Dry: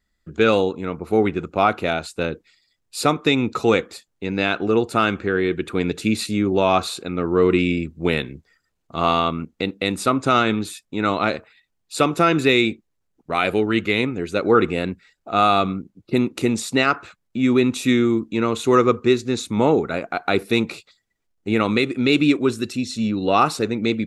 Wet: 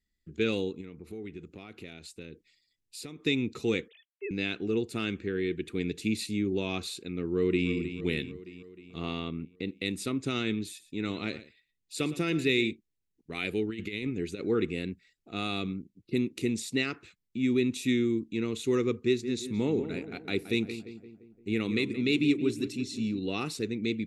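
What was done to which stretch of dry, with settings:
0.81–3.2 compressor 2.5:1, threshold -32 dBFS
3.88–4.31 sine-wave speech
7.22–7.69 echo throw 0.31 s, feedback 60%, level -10.5 dB
8.97–9.66 high shelf 4400 Hz -> 2700 Hz -9.5 dB
10.68–12.71 echo 0.115 s -15.5 dB
13.7–14.45 negative-ratio compressor -23 dBFS, ratio -0.5
19.05–23.19 darkening echo 0.173 s, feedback 55%, low-pass 1800 Hz, level -10.5 dB
whole clip: band shelf 910 Hz -14 dB; gain -9 dB

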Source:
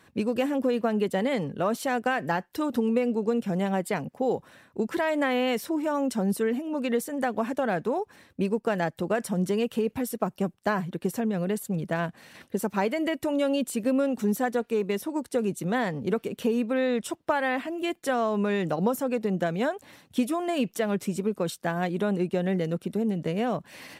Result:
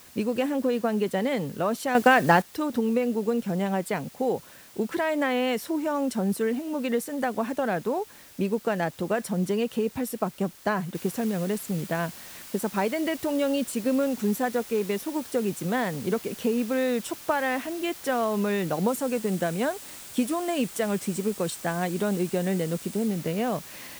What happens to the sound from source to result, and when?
1.95–2.42 gain +8.5 dB
10.95 noise floor step -51 dB -44 dB
18.88–23.07 bell 8300 Hz +5.5 dB 0.4 oct

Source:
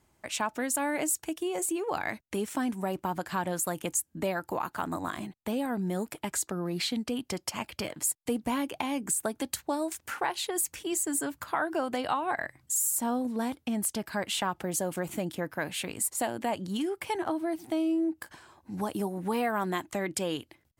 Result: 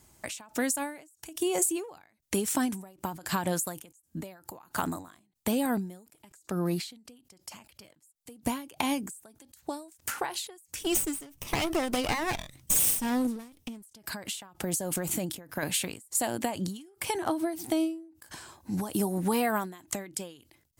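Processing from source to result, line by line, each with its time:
10.81–13.82 minimum comb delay 0.35 ms
14.55–15.63 compressor, threshold -32 dBFS
whole clip: tone controls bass +3 dB, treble +10 dB; compressor 2.5:1, threshold -29 dBFS; ending taper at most 110 dB/s; gain +4.5 dB

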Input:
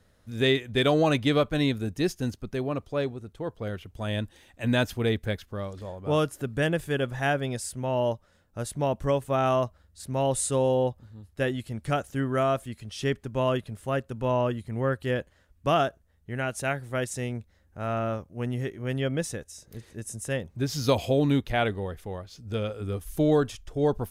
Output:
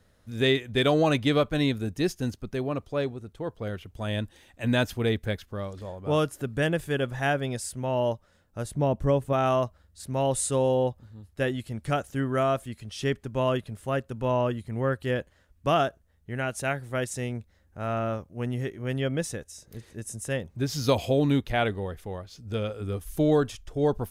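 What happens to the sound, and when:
8.64–9.33 tilt shelf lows +4.5 dB, about 690 Hz

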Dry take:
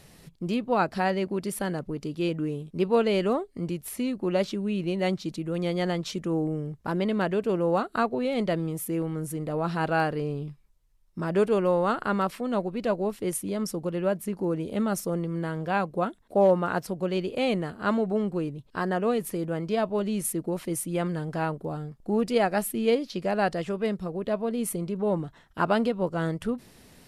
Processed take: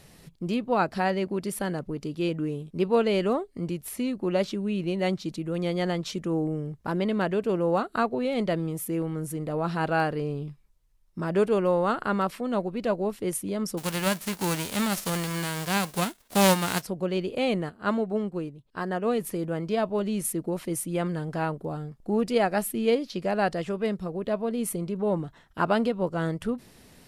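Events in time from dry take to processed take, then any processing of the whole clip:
13.77–16.81 spectral whitening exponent 0.3
17.69–19.11 upward expander, over -41 dBFS

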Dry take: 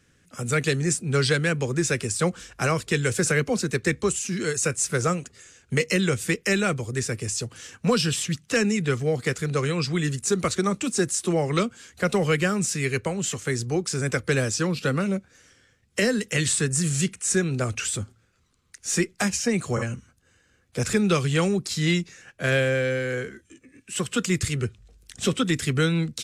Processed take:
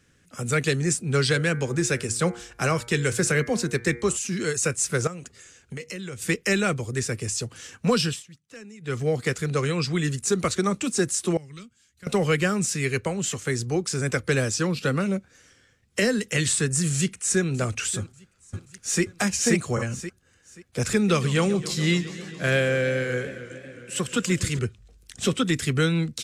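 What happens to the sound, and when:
1.22–4.17 de-hum 118.3 Hz, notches 20
5.07–6.22 compressor 4:1, threshold -34 dBFS
8.04–9 dip -21 dB, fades 0.19 s
11.37–12.07 passive tone stack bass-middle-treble 6-0-2
16.95–17.47 echo throw 0.59 s, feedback 25%, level -16 dB
18–19.03 echo throw 0.53 s, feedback 25%, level 0 dB
20.94–24.59 warbling echo 0.136 s, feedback 79%, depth 161 cents, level -16.5 dB

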